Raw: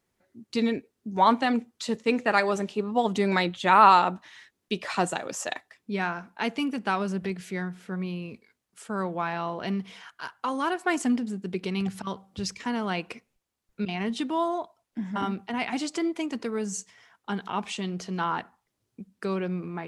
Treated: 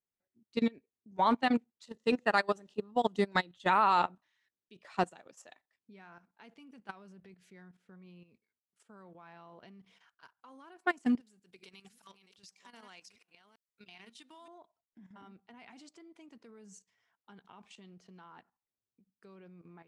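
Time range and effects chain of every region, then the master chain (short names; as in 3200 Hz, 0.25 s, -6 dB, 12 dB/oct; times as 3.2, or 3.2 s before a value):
1.86–3.7 high shelf 2600 Hz +3.5 dB + notch 2300 Hz, Q 5.8 + short-mantissa float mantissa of 8-bit
11.2–14.48 reverse delay 0.393 s, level -6.5 dB + tilt +4 dB/oct + compressor 3:1, threshold -30 dBFS
whole clip: high shelf 9900 Hz -5.5 dB; level quantiser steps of 12 dB; upward expander 2.5:1, over -35 dBFS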